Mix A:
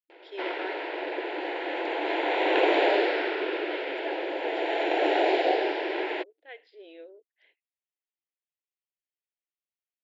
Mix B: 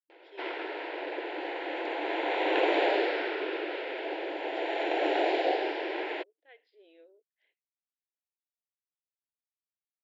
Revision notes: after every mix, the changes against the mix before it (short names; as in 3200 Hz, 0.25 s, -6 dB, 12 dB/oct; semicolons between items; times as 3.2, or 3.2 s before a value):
speech -11.0 dB; reverb: off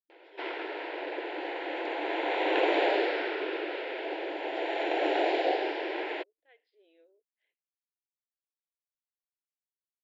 speech -6.0 dB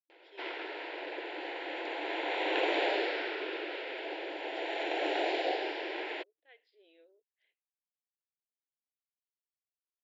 background -5.5 dB; master: add high shelf 2400 Hz +8 dB